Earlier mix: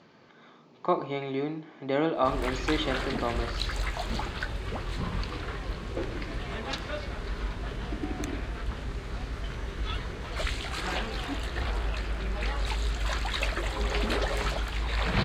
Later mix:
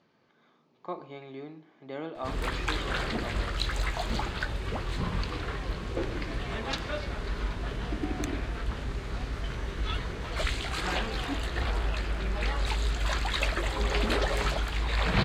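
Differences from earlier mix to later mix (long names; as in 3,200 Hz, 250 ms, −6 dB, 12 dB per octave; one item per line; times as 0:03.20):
speech −11.0 dB
reverb: on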